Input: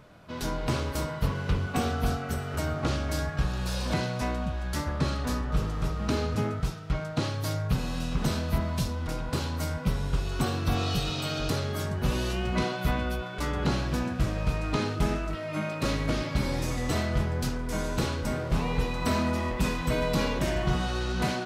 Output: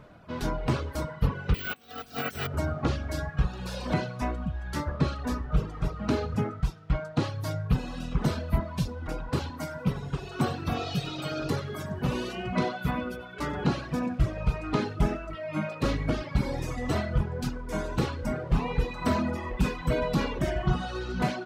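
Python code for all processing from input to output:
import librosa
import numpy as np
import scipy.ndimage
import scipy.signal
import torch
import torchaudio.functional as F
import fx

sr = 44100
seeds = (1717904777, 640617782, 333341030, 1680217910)

y = fx.chain(x, sr, fx.weighting(curve='D'),
    fx.over_compress(threshold_db=-35.0, ratio=-0.5),
    fx.resample_bad(factor=2, down='none', up='zero_stuff'), at=(1.54, 2.47))
y = fx.chain(y, sr, fx.highpass(hz=100.0, slope=12),
    fx.echo_feedback(ms=93, feedback_pct=42, wet_db=-10.5), at=(9.5, 14.2))
y = fx.dereverb_blind(y, sr, rt60_s=1.9)
y = fx.high_shelf(y, sr, hz=3400.0, db=-10.0)
y = y * 10.0 ** (3.0 / 20.0)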